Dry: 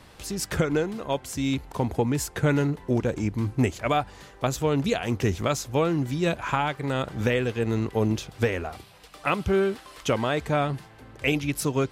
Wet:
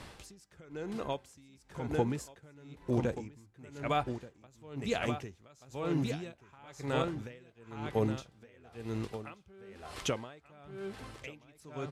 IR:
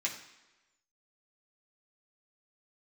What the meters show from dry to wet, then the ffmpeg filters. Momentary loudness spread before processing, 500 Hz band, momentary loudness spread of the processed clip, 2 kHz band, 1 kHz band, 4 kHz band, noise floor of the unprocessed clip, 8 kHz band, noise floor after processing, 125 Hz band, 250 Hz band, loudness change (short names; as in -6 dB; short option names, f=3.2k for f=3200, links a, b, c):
6 LU, -11.5 dB, 20 LU, -13.5 dB, -10.5 dB, -11.0 dB, -50 dBFS, -14.5 dB, -64 dBFS, -12.0 dB, -11.5 dB, -10.5 dB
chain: -filter_complex "[0:a]lowpass=11k,aecho=1:1:1181:0.501,asplit=2[a][b];[1:a]atrim=start_sample=2205[c];[b][c]afir=irnorm=-1:irlink=0,volume=-20dB[d];[a][d]amix=inputs=2:normalize=0,acompressor=threshold=-42dB:ratio=1.5,aeval=exprs='val(0)*pow(10,-29*(0.5-0.5*cos(2*PI*1*n/s))/20)':c=same,volume=2dB"